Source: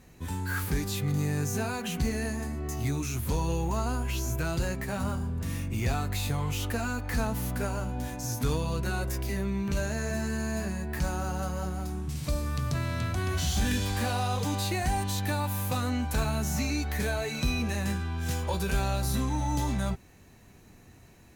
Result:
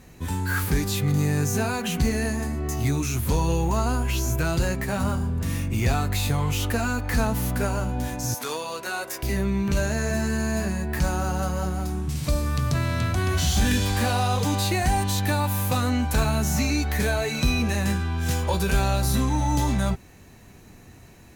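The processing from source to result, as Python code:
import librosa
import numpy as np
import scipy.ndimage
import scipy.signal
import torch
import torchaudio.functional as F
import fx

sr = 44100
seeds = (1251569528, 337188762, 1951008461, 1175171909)

y = fx.highpass(x, sr, hz=540.0, slope=12, at=(8.34, 9.23))
y = y * 10.0 ** (6.0 / 20.0)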